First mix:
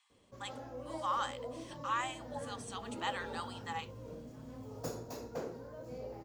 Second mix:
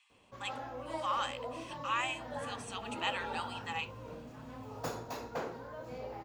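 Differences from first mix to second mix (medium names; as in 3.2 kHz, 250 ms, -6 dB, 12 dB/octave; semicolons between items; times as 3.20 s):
speech: add peaking EQ 2.6 kHz +13.5 dB 0.35 oct; background: add high-order bell 1.7 kHz +9 dB 2.7 oct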